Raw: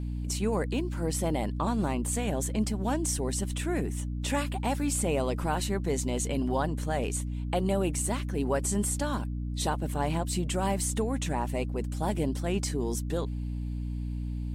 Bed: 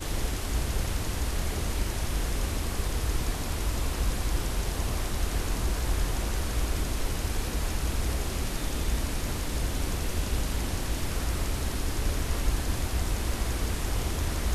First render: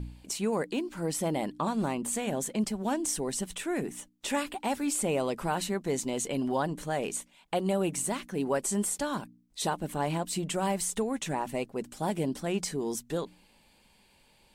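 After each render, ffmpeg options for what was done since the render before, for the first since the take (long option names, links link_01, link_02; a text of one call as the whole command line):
ffmpeg -i in.wav -af "bandreject=frequency=60:width_type=h:width=4,bandreject=frequency=120:width_type=h:width=4,bandreject=frequency=180:width_type=h:width=4,bandreject=frequency=240:width_type=h:width=4,bandreject=frequency=300:width_type=h:width=4" out.wav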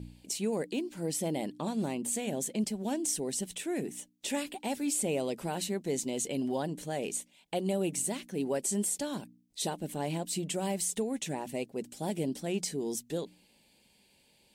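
ffmpeg -i in.wav -af "highpass=frequency=150:poles=1,equalizer=frequency=1200:width_type=o:width=1.1:gain=-13" out.wav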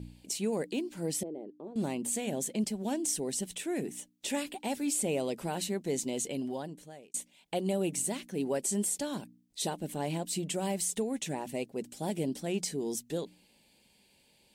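ffmpeg -i in.wav -filter_complex "[0:a]asettb=1/sr,asplit=3[link_01][link_02][link_03];[link_01]atrim=end=1.234[link_04];[link_02]atrim=start=1.23:end=1.76,asetpts=PTS-STARTPTS,afade=type=in:duration=0.004:curve=qsin,afade=type=out:start_time=0.526:duration=0.004:curve=qsin,bandpass=frequency=400:width_type=q:width=3.8[link_05];[link_03]atrim=start=1.756[link_06];[link_04][link_05]acrossfade=duration=0.004:curve1=hsin:curve2=qsin[link_07];[link_07][link_06]acrossfade=duration=0.004:curve1=qsin:curve2=hsin,asplit=2[link_08][link_09];[link_08]atrim=end=7.14,asetpts=PTS-STARTPTS,afade=type=out:start_time=6.14:duration=1[link_10];[link_09]atrim=start=7.14,asetpts=PTS-STARTPTS,afade=type=in:duration=0.004:curve=hsin[link_11];[link_10][link_11]concat=n=2:v=0:a=1" out.wav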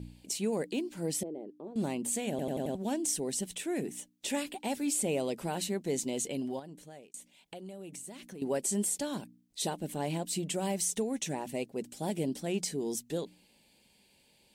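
ffmpeg -i in.wav -filter_complex "[0:a]asettb=1/sr,asplit=3[link_01][link_02][link_03];[link_01]atrim=end=6.594[link_04];[link_02]atrim=start=6.59:end=8.42,asetpts=PTS-STARTPTS,afade=type=in:duration=0.004:curve=qsin,afade=type=out:start_time=1.826:duration=0.004:curve=qsin,acompressor=threshold=-42dB:ratio=6:attack=3.2:release=140:knee=1:detection=peak[link_05];[link_03]atrim=start=8.416[link_06];[link_04][link_05]acrossfade=duration=0.004:curve1=hsin:curve2=qsin[link_07];[link_07][link_06]acrossfade=duration=0.004:curve1=qsin:curve2=hsin,asettb=1/sr,asplit=3[link_08][link_09][link_10];[link_08]atrim=end=10.764[link_11];[link_09]atrim=start=10.76:end=11.36,asetpts=PTS-STARTPTS,afade=type=in:duration=0.004:curve=qsin,afade=type=out:start_time=0.596:duration=0.004:curve=qsin,equalizer=frequency=5900:width=6.7:gain=7[link_12];[link_10]atrim=start=11.356[link_13];[link_11][link_12]acrossfade=duration=0.004:curve1=hsin:curve2=qsin[link_14];[link_14][link_13]acrossfade=duration=0.004:curve1=qsin:curve2=hsin,asplit=6[link_15][link_16][link_17][link_18][link_19][link_20];[link_15]atrim=end=2.392[link_21];[link_16]atrim=start=2.298:end=2.392[link_22];[link_17]atrim=start=2.298:end=2.392[link_23];[link_18]atrim=start=2.298:end=2.392[link_24];[link_19]atrim=start=2.298:end=2.392[link_25];[link_20]atrim=start=2.748[link_26];[link_21][link_22]acrossfade=duration=0.004:curve1=hsin:curve2=hsin[link_27];[link_27][link_23]acrossfade=duration=0.004:curve1=hsin:curve2=hsin[link_28];[link_28][link_24]acrossfade=duration=0.004:curve1=hsin:curve2=hsin[link_29];[link_29][link_25]acrossfade=duration=0.004:curve1=hsin:curve2=hsin[link_30];[link_30][link_26]acrossfade=duration=0.004:curve1=hsin:curve2=hsin" out.wav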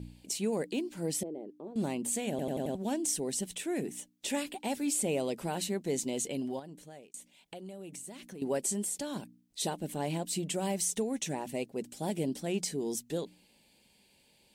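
ffmpeg -i in.wav -filter_complex "[0:a]asettb=1/sr,asplit=3[link_01][link_02][link_03];[link_01]atrim=end=8.724[link_04];[link_02]atrim=start=8.72:end=9.16,asetpts=PTS-STARTPTS,afade=type=in:duration=0.004:curve=qsin,afade=type=out:start_time=0.436:duration=0.004:curve=qsin,acompressor=threshold=-36dB:ratio=1.5:attack=3.2:release=140:knee=1:detection=peak[link_05];[link_03]atrim=start=9.156[link_06];[link_04][link_05]acrossfade=duration=0.004:curve1=hsin:curve2=qsin[link_07];[link_07][link_06]acrossfade=duration=0.004:curve1=qsin:curve2=hsin" out.wav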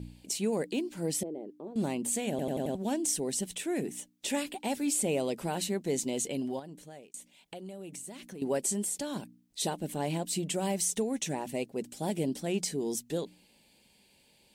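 ffmpeg -i in.wav -af "volume=1.5dB" out.wav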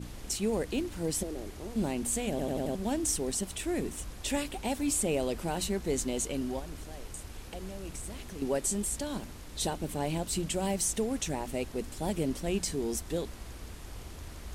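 ffmpeg -i in.wav -i bed.wav -filter_complex "[1:a]volume=-15dB[link_01];[0:a][link_01]amix=inputs=2:normalize=0" out.wav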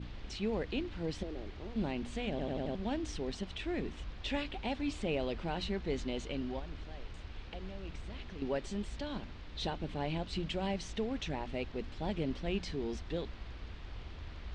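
ffmpeg -i in.wav -af "lowpass=frequency=4000:width=0.5412,lowpass=frequency=4000:width=1.3066,equalizer=frequency=390:width=0.33:gain=-5" out.wav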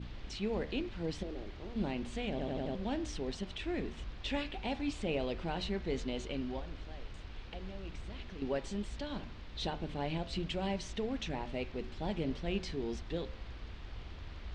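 ffmpeg -i in.wav -af "bandreject=frequency=74.65:width_type=h:width=4,bandreject=frequency=149.3:width_type=h:width=4,bandreject=frequency=223.95:width_type=h:width=4,bandreject=frequency=298.6:width_type=h:width=4,bandreject=frequency=373.25:width_type=h:width=4,bandreject=frequency=447.9:width_type=h:width=4,bandreject=frequency=522.55:width_type=h:width=4,bandreject=frequency=597.2:width_type=h:width=4,bandreject=frequency=671.85:width_type=h:width=4,bandreject=frequency=746.5:width_type=h:width=4,bandreject=frequency=821.15:width_type=h:width=4,bandreject=frequency=895.8:width_type=h:width=4,bandreject=frequency=970.45:width_type=h:width=4,bandreject=frequency=1045.1:width_type=h:width=4,bandreject=frequency=1119.75:width_type=h:width=4,bandreject=frequency=1194.4:width_type=h:width=4,bandreject=frequency=1269.05:width_type=h:width=4,bandreject=frequency=1343.7:width_type=h:width=4,bandreject=frequency=1418.35:width_type=h:width=4,bandreject=frequency=1493:width_type=h:width=4,bandreject=frequency=1567.65:width_type=h:width=4,bandreject=frequency=1642.3:width_type=h:width=4,bandreject=frequency=1716.95:width_type=h:width=4,bandreject=frequency=1791.6:width_type=h:width=4,bandreject=frequency=1866.25:width_type=h:width=4,bandreject=frequency=1940.9:width_type=h:width=4,bandreject=frequency=2015.55:width_type=h:width=4,bandreject=frequency=2090.2:width_type=h:width=4,bandreject=frequency=2164.85:width_type=h:width=4,bandreject=frequency=2239.5:width_type=h:width=4,bandreject=frequency=2314.15:width_type=h:width=4,bandreject=frequency=2388.8:width_type=h:width=4,bandreject=frequency=2463.45:width_type=h:width=4,bandreject=frequency=2538.1:width_type=h:width=4,bandreject=frequency=2612.75:width_type=h:width=4,bandreject=frequency=2687.4:width_type=h:width=4" out.wav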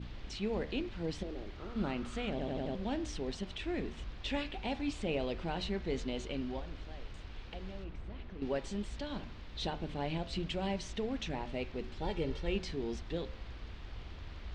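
ffmpeg -i in.wav -filter_complex "[0:a]asettb=1/sr,asplit=3[link_01][link_02][link_03];[link_01]atrim=end=1.584[link_04];[link_02]atrim=start=1.58:end=2.33,asetpts=PTS-STARTPTS,afade=type=in:duration=0.004:curve=qsin,afade=type=out:start_time=0.746:duration=0.004:curve=qsin,equalizer=frequency=1300:width_type=o:width=0.32:gain=14[link_05];[link_03]atrim=start=2.326[link_06];[link_04][link_05]acrossfade=duration=0.004:curve1=hsin:curve2=qsin[link_07];[link_07][link_06]acrossfade=duration=0.004:curve1=qsin:curve2=hsin,asplit=3[link_08][link_09][link_10];[link_08]afade=type=out:start_time=7.83:duration=0.02[link_11];[link_09]lowpass=frequency=1400:poles=1,afade=type=in:start_time=7.83:duration=0.02,afade=type=out:start_time=8.41:duration=0.02[link_12];[link_10]afade=type=in:start_time=8.41:duration=0.02[link_13];[link_11][link_12][link_13]amix=inputs=3:normalize=0,asettb=1/sr,asplit=3[link_14][link_15][link_16];[link_14]atrim=end=12.014[link_17];[link_15]atrim=start=12.01:end=12.56,asetpts=PTS-STARTPTS,afade=type=in:duration=0.004:curve=qsin,afade=type=out:start_time=0.546:duration=0.004:curve=qsin,aecho=1:1:2.2:0.56,atrim=end_sample=24255[link_18];[link_16]atrim=start=12.556[link_19];[link_17][link_18]acrossfade=duration=0.004:curve1=hsin:curve2=qsin[link_20];[link_20][link_19]acrossfade=duration=0.004:curve1=qsin:curve2=hsin" out.wav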